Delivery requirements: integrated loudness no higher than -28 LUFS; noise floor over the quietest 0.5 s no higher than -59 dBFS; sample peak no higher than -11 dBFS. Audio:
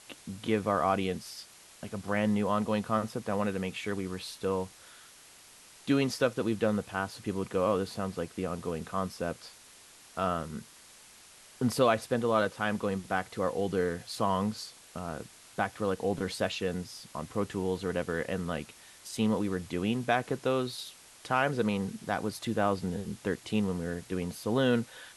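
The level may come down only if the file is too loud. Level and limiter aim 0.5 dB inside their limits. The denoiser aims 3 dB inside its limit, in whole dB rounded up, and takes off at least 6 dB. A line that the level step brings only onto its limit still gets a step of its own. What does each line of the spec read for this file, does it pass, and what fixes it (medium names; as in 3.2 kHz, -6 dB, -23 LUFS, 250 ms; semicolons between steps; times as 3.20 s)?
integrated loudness -31.5 LUFS: pass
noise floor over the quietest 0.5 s -55 dBFS: fail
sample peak -12.0 dBFS: pass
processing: noise reduction 7 dB, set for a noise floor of -55 dBFS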